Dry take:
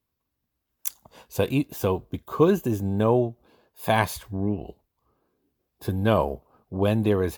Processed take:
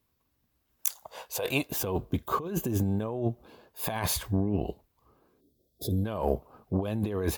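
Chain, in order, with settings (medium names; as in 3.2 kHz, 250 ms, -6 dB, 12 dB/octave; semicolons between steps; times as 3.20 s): 0.87–1.70 s: resonant low shelf 390 Hz -12.5 dB, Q 1.5; 5.40–6.04 s: time-frequency box 690–3200 Hz -29 dB; compressor with a negative ratio -29 dBFS, ratio -1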